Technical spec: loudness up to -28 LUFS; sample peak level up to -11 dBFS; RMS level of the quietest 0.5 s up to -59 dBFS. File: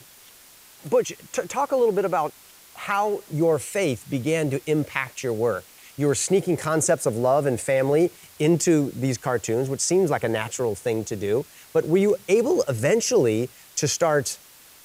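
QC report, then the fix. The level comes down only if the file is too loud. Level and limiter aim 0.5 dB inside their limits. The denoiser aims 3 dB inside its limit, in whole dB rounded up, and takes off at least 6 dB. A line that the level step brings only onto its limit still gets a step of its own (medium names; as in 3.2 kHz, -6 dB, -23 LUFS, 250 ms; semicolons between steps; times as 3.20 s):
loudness -23.5 LUFS: fail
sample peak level -7.0 dBFS: fail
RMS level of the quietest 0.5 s -50 dBFS: fail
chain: noise reduction 7 dB, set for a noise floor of -50 dBFS; trim -5 dB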